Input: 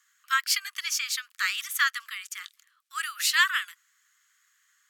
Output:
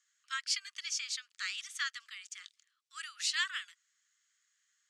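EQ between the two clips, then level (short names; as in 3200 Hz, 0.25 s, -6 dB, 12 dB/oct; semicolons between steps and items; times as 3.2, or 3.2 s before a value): Bessel low-pass 4900 Hz, order 6; differentiator; 0.0 dB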